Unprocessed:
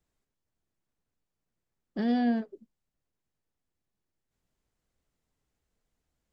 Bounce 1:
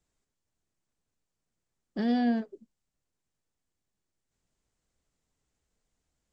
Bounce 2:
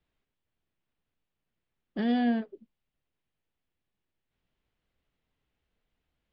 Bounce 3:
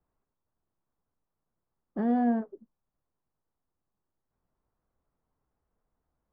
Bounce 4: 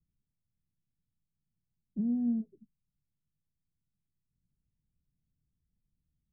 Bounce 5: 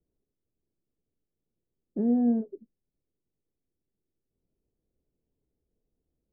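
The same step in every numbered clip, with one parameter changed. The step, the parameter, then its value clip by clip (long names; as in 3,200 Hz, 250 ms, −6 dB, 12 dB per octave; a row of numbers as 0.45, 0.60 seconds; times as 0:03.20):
low-pass with resonance, frequency: 7,900, 3,100, 1,100, 160, 410 Hertz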